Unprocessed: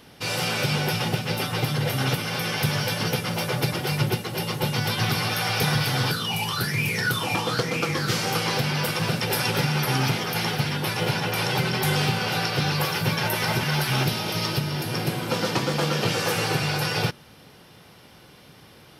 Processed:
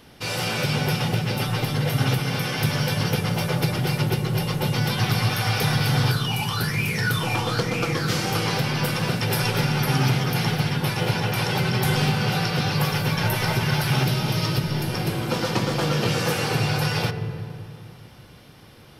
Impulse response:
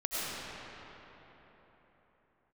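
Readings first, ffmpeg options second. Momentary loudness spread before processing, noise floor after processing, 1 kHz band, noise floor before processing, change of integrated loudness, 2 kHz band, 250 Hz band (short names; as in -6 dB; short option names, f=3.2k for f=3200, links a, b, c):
3 LU, -46 dBFS, 0.0 dB, -50 dBFS, +1.0 dB, -0.5 dB, +2.5 dB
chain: -filter_complex "[0:a]asplit=2[a][b];[b]aemphasis=mode=reproduction:type=riaa[c];[1:a]atrim=start_sample=2205,asetrate=74970,aresample=44100[d];[c][d]afir=irnorm=-1:irlink=0,volume=-12dB[e];[a][e]amix=inputs=2:normalize=0,volume=-1dB"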